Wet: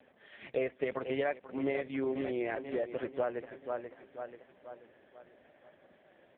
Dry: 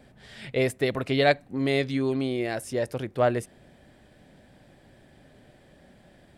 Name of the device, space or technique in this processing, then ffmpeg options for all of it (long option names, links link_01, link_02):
voicemail: -filter_complex "[0:a]acrossover=split=3800[link_01][link_02];[link_02]acompressor=threshold=-52dB:ratio=4:attack=1:release=60[link_03];[link_01][link_03]amix=inputs=2:normalize=0,highpass=360,lowpass=2900,aecho=1:1:486|972|1458|1944|2430:0.251|0.121|0.0579|0.0278|0.0133,acompressor=threshold=-28dB:ratio=8" -ar 8000 -c:a libopencore_amrnb -b:a 4750